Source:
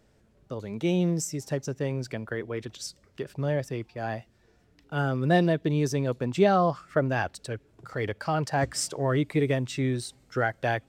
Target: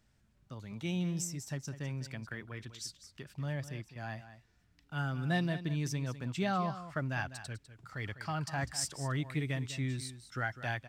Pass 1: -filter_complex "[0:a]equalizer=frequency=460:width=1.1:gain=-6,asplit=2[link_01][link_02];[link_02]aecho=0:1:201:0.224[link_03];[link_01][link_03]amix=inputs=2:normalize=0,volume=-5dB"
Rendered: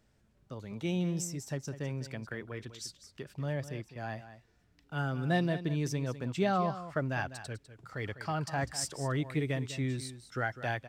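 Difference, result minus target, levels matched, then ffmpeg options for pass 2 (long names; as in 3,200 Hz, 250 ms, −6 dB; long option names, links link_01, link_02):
500 Hz band +4.0 dB
-filter_complex "[0:a]equalizer=frequency=460:width=1.1:gain=-14.5,asplit=2[link_01][link_02];[link_02]aecho=0:1:201:0.224[link_03];[link_01][link_03]amix=inputs=2:normalize=0,volume=-5dB"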